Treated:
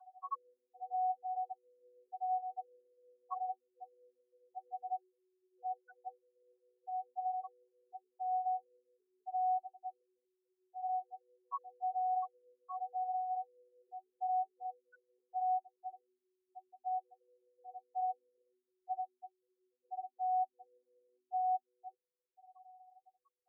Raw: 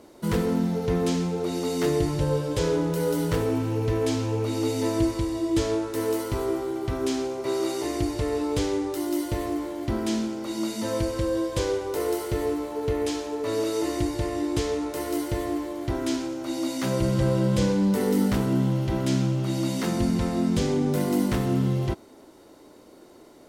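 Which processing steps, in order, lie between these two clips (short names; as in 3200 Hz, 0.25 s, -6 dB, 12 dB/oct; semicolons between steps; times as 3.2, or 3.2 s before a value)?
chord vocoder bare fifth, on B3; spectral gate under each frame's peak -15 dB strong; rippled Chebyshev high-pass 740 Hz, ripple 6 dB; gain +13.5 dB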